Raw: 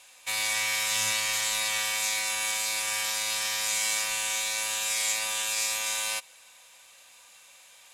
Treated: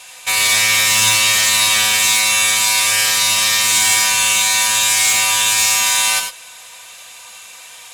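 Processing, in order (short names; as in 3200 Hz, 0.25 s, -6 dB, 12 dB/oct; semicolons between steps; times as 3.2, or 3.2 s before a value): notch comb 280 Hz; added harmonics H 5 -12 dB, 6 -18 dB, 8 -19 dB, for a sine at -15 dBFS; non-linear reverb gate 0.12 s rising, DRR 5 dB; gain +9 dB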